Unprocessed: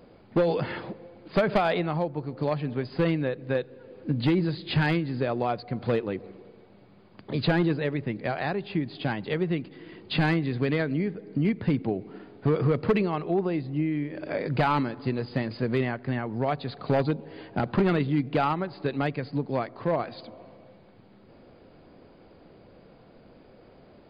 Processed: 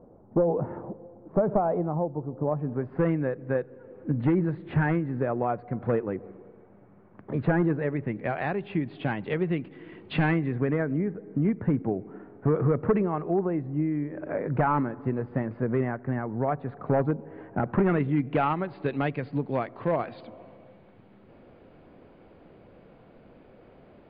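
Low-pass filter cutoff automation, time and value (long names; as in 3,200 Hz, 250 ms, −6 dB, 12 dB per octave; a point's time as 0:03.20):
low-pass filter 24 dB per octave
0:02.41 1,000 Hz
0:03.03 1,800 Hz
0:07.71 1,800 Hz
0:08.47 2,800 Hz
0:10.18 2,800 Hz
0:10.76 1,700 Hz
0:17.47 1,700 Hz
0:18.68 3,200 Hz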